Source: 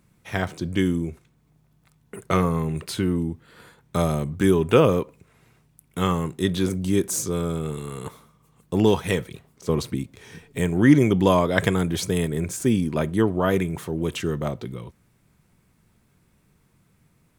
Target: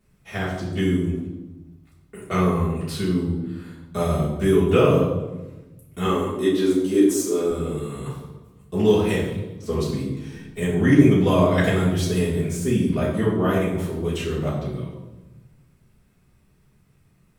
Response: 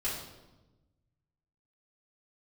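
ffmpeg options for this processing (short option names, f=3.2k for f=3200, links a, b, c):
-filter_complex "[0:a]asettb=1/sr,asplit=3[a][b][c];[a]atrim=end=6.054[d];[b]atrim=start=6.05:end=7.5,asetpts=PTS-STARTPTS,afade=t=in:d=0.004:c=qsin,afade=t=out:st=1.446:d=0.004:c=qsin,lowshelf=f=200:t=q:w=3:g=-13[e];[c]atrim=start=7.496[f];[d][e]acrossfade=d=0.004:c1=hsin:c2=qsin[g];[g][f]acrossfade=d=0.004:c1=qsin:c2=hsin[h];[1:a]atrim=start_sample=2205[i];[h][i]afir=irnorm=-1:irlink=0,volume=-5dB"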